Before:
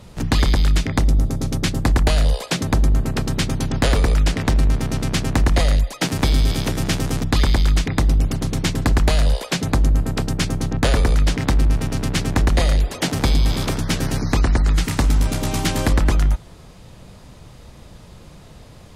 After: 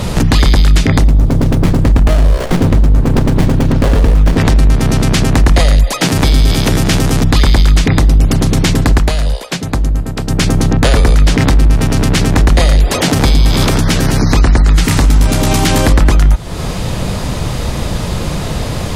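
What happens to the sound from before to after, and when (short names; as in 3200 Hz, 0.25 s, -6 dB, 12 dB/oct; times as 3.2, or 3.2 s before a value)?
1.08–4.38 running maximum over 33 samples
8.72–10.66 dip -22 dB, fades 0.47 s quadratic
whole clip: compressor 3:1, threshold -31 dBFS; maximiser +26 dB; gain -1 dB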